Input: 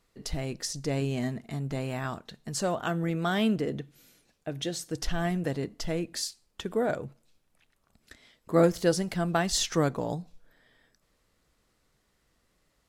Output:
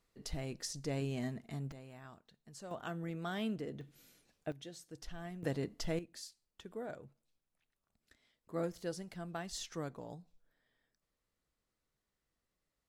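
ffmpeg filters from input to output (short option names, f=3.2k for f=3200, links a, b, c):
-af "asetnsamples=n=441:p=0,asendcmd='1.72 volume volume -20dB;2.71 volume volume -12dB;3.81 volume volume -5dB;4.52 volume volume -17dB;5.43 volume volume -5.5dB;5.99 volume volume -16dB',volume=-8dB"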